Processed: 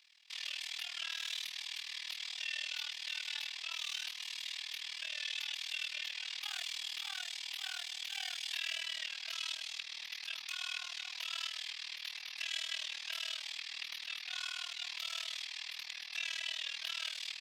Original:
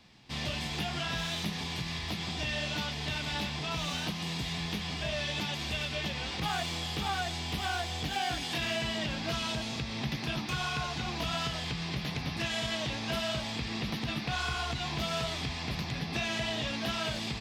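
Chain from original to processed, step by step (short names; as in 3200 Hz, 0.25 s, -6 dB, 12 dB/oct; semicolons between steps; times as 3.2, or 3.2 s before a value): AM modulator 39 Hz, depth 85%; Chebyshev high-pass 2500 Hz, order 2; gain +1 dB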